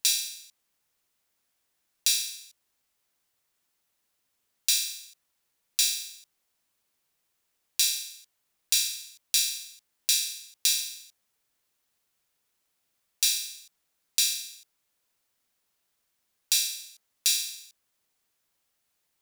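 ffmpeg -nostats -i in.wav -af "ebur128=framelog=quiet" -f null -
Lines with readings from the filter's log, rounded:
Integrated loudness:
  I:         -26.1 LUFS
  Threshold: -37.5 LUFS
Loudness range:
  LRA:         6.0 LU
  Threshold: -50.0 LUFS
  LRA low:   -33.2 LUFS
  LRA high:  -27.2 LUFS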